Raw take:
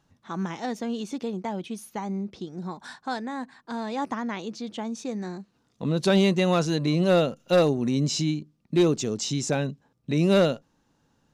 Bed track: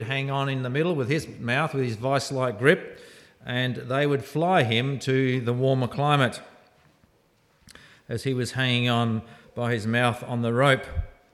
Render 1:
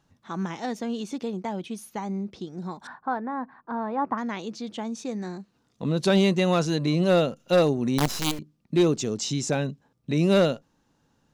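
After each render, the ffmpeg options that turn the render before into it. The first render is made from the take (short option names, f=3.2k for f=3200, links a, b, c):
-filter_complex "[0:a]asettb=1/sr,asplit=3[a][b][c];[a]atrim=end=2.874[d];[b]atrim=start=2.87:end=4.18,asetpts=PTS-STARTPTS,afade=t=in:d=0.004:c=qsin,afade=t=out:st=1.306:d=0.004:c=qsin,lowpass=f=1.2k:t=q:w=1.8[e];[c]atrim=start=4.176[f];[d][e]acrossfade=d=0.004:c1=hsin:c2=qsin[g];[g][f]acrossfade=d=0.004:c1=qsin:c2=hsin,asettb=1/sr,asplit=3[h][i][j];[h]atrim=end=7.984[k];[i]atrim=start=7.98:end=8.39,asetpts=PTS-STARTPTS,afade=t=in:d=0.004:c=qsin,afade=t=out:st=0.406:d=0.004:c=qsin,acrusher=bits=4:dc=4:mix=0:aa=0.000001[l];[j]atrim=start=8.386[m];[k][l]acrossfade=d=0.004:c1=hsin:c2=qsin[n];[n][m]acrossfade=d=0.004:c1=qsin:c2=hsin"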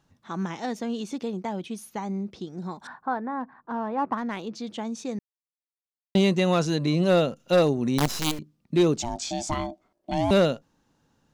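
-filter_complex "[0:a]asplit=3[a][b][c];[a]afade=t=out:st=3.39:d=0.02[d];[b]adynamicsmooth=sensitivity=7.5:basefreq=3.6k,afade=t=in:st=3.39:d=0.02,afade=t=out:st=4.54:d=0.02[e];[c]afade=t=in:st=4.54:d=0.02[f];[d][e][f]amix=inputs=3:normalize=0,asettb=1/sr,asplit=3[g][h][i];[g]atrim=end=9.024[j];[h]atrim=start=9.02:end=10.31,asetpts=PTS-STARTPTS,afade=t=in:d=0.004:c=qsin,afade=t=out:st=1.286:d=0.004:c=qsin,aeval=exprs='val(0)*sin(2*PI*470*n/s)':c=same[k];[i]atrim=start=10.306[l];[j][k]acrossfade=d=0.004:c1=hsin:c2=qsin[m];[m][l]acrossfade=d=0.004:c1=qsin:c2=hsin,asplit=3[n][o][p];[n]atrim=end=5.19,asetpts=PTS-STARTPTS,afade=t=out:st=5.186:d=0.004:c=hsin[q];[o]atrim=start=5.19:end=6.15,asetpts=PTS-STARTPTS,volume=0[r];[p]atrim=start=6.15,asetpts=PTS-STARTPTS,afade=t=in:d=0.004:c=hsin[s];[q][r][s]concat=n=3:v=0:a=1"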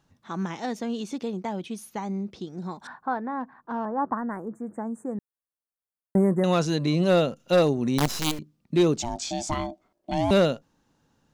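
-filter_complex "[0:a]asettb=1/sr,asplit=3[a][b][c];[a]atrim=end=3.854[d];[b]atrim=start=3.85:end=6.44,asetpts=PTS-STARTPTS,afade=t=in:d=0.004:c=qsin,afade=t=out:st=2.586:d=0.004:c=qsin,asuperstop=centerf=3900:order=12:qfactor=0.62[e];[c]atrim=start=6.436[f];[d][e]acrossfade=d=0.004:c1=hsin:c2=qsin[g];[g][f]acrossfade=d=0.004:c1=qsin:c2=hsin"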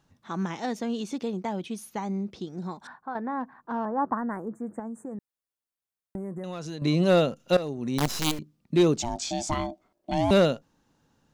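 -filter_complex "[0:a]asettb=1/sr,asplit=3[a][b][c];[a]atrim=end=4.794[d];[b]atrim=start=4.79:end=6.82,asetpts=PTS-STARTPTS,afade=t=in:d=0.004:c=qsin,afade=t=out:st=2.026:d=0.004:c=qsin,acompressor=threshold=-33dB:ratio=6:attack=3.2:release=140:knee=1:detection=peak[e];[c]atrim=start=6.816[f];[d][e]acrossfade=d=0.004:c1=hsin:c2=qsin[g];[g][f]acrossfade=d=0.004:c1=qsin:c2=hsin,asplit=3[h][i][j];[h]atrim=end=3.15,asetpts=PTS-STARTPTS,afade=t=out:st=2.62:d=0.53:silence=0.354813[k];[i]atrim=start=3.15:end=7.57,asetpts=PTS-STARTPTS,afade=t=in:d=0.004:c=hsin:silence=0.354813,afade=t=out:st=4.416:d=0.004:c=hsin:silence=0.158489[l];[j]atrim=start=7.57,asetpts=PTS-STARTPTS,afade=t=in:d=0.63:silence=0.158489[m];[k][l][m]concat=n=3:v=0:a=1"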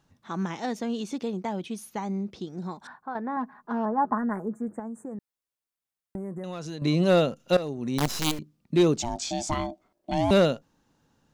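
-filter_complex "[0:a]asettb=1/sr,asplit=3[a][b][c];[a]atrim=end=3.364[d];[b]atrim=start=3.36:end=4.68,asetpts=PTS-STARTPTS,afade=t=in:d=0.004:c=qsin,afade=t=out:st=1.316:d=0.004:c=qsin,aecho=1:1:4.8:0.6,atrim=end_sample=58212[e];[c]atrim=start=4.676[f];[d][e]acrossfade=d=0.004:c1=hsin:c2=qsin[g];[g][f]acrossfade=d=0.004:c1=qsin:c2=hsin"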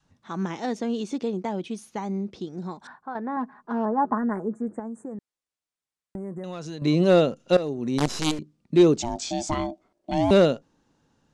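-af "lowpass=f=9.5k:w=0.5412,lowpass=f=9.5k:w=1.3066,adynamicequalizer=threshold=0.0178:dfrequency=370:dqfactor=1.1:tfrequency=370:tqfactor=1.1:attack=5:release=100:ratio=0.375:range=2.5:mode=boostabove:tftype=bell"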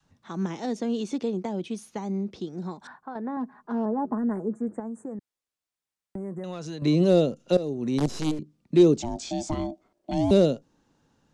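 -filter_complex "[0:a]acrossover=split=160|630|3500[a][b][c][d];[c]acompressor=threshold=-40dB:ratio=6[e];[d]alimiter=level_in=4dB:limit=-24dB:level=0:latency=1:release=234,volume=-4dB[f];[a][b][e][f]amix=inputs=4:normalize=0"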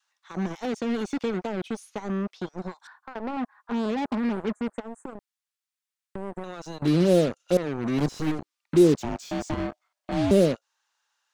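-filter_complex "[0:a]acrossover=split=970[a][b];[a]acrusher=bits=4:mix=0:aa=0.5[c];[b]asoftclip=type=tanh:threshold=-39.5dB[d];[c][d]amix=inputs=2:normalize=0"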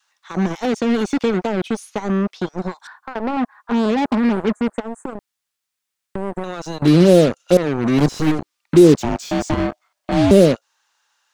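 -af "volume=9.5dB,alimiter=limit=-1dB:level=0:latency=1"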